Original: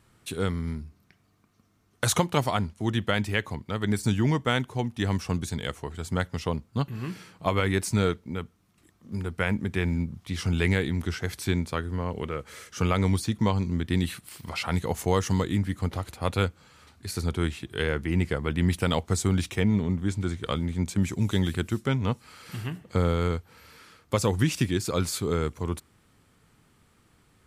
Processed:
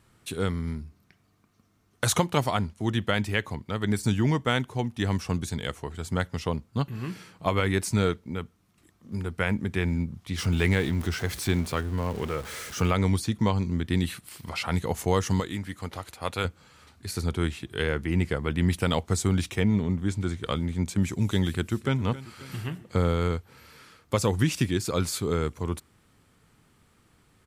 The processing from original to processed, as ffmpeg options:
-filter_complex "[0:a]asettb=1/sr,asplit=3[s0][s1][s2];[s0]atrim=end=10.384[s3];[s1]atrim=start=10.38:end=12.91,asetpts=PTS-STARTPTS,afade=t=in:d=0.004:c=qsin,afade=t=out:st=2.526:d=0.004:c=qsin,aeval=exprs='val(0)+0.5*0.0158*sgn(val(0))':c=same[s4];[s2]atrim=start=12.906[s5];[s3][s4]acrossfade=d=0.004:c1=hsin:c2=qsin[s6];[s6][s5]acrossfade=d=0.004:c1=qsin:c2=hsin,asettb=1/sr,asplit=3[s7][s8][s9];[s7]atrim=end=15.404[s10];[s8]atrim=start=15.4:end=16.45,asetpts=PTS-STARTPTS,afade=t=in:d=0.004:c=qsin,afade=t=out:st=1.046:d=0.004:c=qsin,lowshelf=f=380:g=-9.5[s11];[s9]atrim=start=16.446[s12];[s10][s11]acrossfade=d=0.004:c1=hsin:c2=qsin[s13];[s13][s12]acrossfade=d=0.004:c1=qsin:c2=hsin,asplit=2[s14][s15];[s15]afade=t=in:st=21.5:d=0.01,afade=t=out:st=21.98:d=0.01,aecho=0:1:270|540|810|1080|1350|1620|1890:0.149624|0.0972553|0.063216|0.0410904|0.0267087|0.0173607|0.0112844[s16];[s14][s16]amix=inputs=2:normalize=0"

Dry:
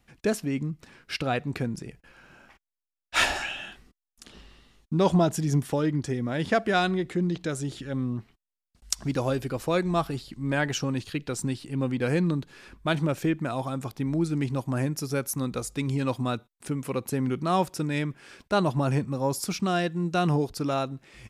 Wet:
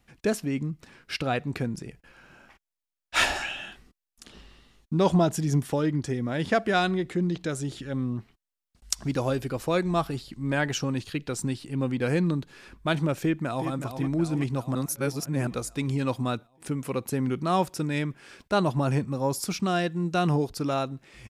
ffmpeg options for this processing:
-filter_complex "[0:a]asplit=2[s0][s1];[s1]afade=t=in:st=13.22:d=0.01,afade=t=out:st=13.7:d=0.01,aecho=0:1:370|740|1110|1480|1850|2220|2590|2960|3330:0.375837|0.244294|0.158791|0.103214|0.0670893|0.0436081|0.0283452|0.0184244|0.0119759[s2];[s0][s2]amix=inputs=2:normalize=0,asplit=3[s3][s4][s5];[s3]atrim=end=14.752[s6];[s4]atrim=start=14.748:end=15.472,asetpts=PTS-STARTPTS,areverse[s7];[s5]atrim=start=15.468[s8];[s6][s7]acrossfade=d=0.004:c1=hsin:c2=hsin[s9];[s9][s8]acrossfade=d=0.004:c1=hsin:c2=hsin"

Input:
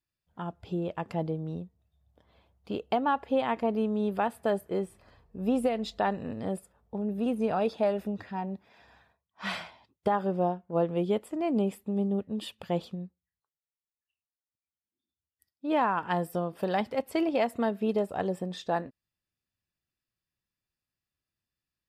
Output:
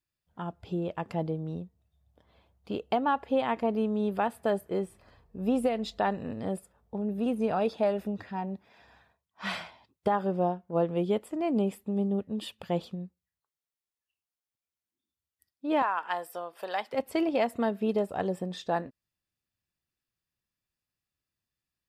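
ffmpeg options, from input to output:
-filter_complex "[0:a]asettb=1/sr,asplit=3[s0][s1][s2];[s0]atrim=end=15.824[s3];[s1]atrim=start=15.82:end=16.93,asetpts=PTS-STARTPTS,afade=t=in:d=0.004:c=qsin,afade=t=out:st=1.106:d=0.004:c=qsin,highpass=700[s4];[s2]atrim=start=16.926[s5];[s3][s4]acrossfade=d=0.004:c1=hsin:c2=qsin[s6];[s6][s5]acrossfade=d=0.004:c1=qsin:c2=hsin"

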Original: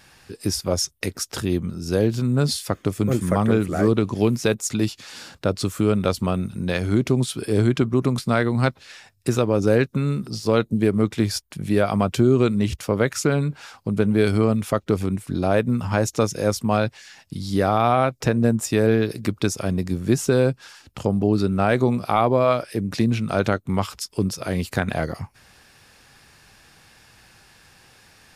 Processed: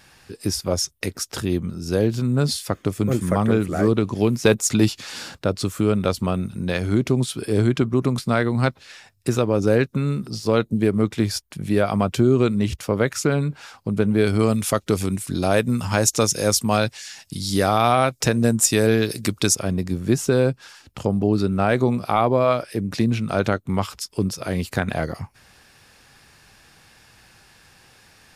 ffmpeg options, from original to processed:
-filter_complex "[0:a]asettb=1/sr,asplit=3[s0][s1][s2];[s0]atrim=end=4.454[s3];[s1]atrim=start=4.45:end=5.36,asetpts=PTS-STARTPTS,afade=t=in:d=0.004:c=qsin,afade=t=out:st=0.906:d=0.004:c=qsin,acontrast=28[s4];[s2]atrim=start=5.356[s5];[s3][s4]acrossfade=d=0.004:c1=hsin:c2=qsin[s6];[s6][s5]acrossfade=d=0.004:c1=qsin:c2=hsin,asettb=1/sr,asplit=3[s7][s8][s9];[s7]atrim=end=14.394[s10];[s8]atrim=start=14.39:end=19.55,asetpts=PTS-STARTPTS,afade=t=in:d=0.004:c=qsin,afade=t=out:st=5.156:d=0.004:c=qsin,equalizer=f=8900:t=o:w=2.6:g=12[s11];[s9]atrim=start=19.546[s12];[s10][s11]acrossfade=d=0.004:c1=hsin:c2=qsin[s13];[s13][s12]acrossfade=d=0.004:c1=qsin:c2=hsin"

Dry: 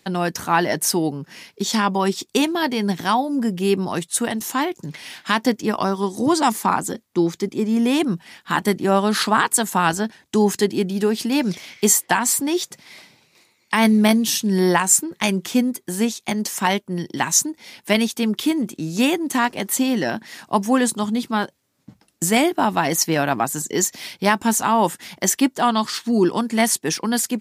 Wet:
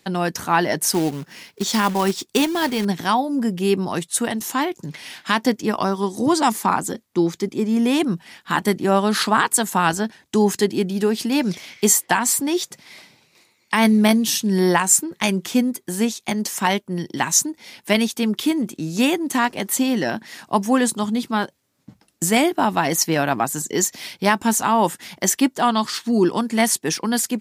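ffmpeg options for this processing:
-filter_complex "[0:a]asettb=1/sr,asplit=3[s0][s1][s2];[s0]atrim=end=0.934[s3];[s1]atrim=start=0.93:end=2.85,asetpts=PTS-STARTPTS,afade=t=in:d=0.004:c=qsin,afade=t=out:st=1.916:d=0.004:c=qsin,acrusher=bits=3:mode=log:mix=0:aa=0.000001[s4];[s2]atrim=start=2.846[s5];[s3][s4]acrossfade=d=0.004:c1=hsin:c2=qsin[s6];[s6][s5]acrossfade=d=0.004:c1=qsin:c2=hsin"

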